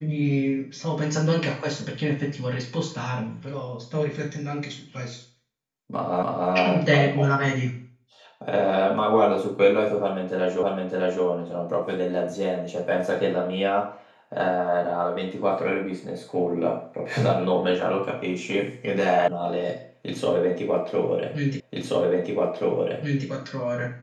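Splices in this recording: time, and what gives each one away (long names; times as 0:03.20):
0:06.23: the same again, the last 0.29 s
0:10.63: the same again, the last 0.61 s
0:19.28: cut off before it has died away
0:21.60: the same again, the last 1.68 s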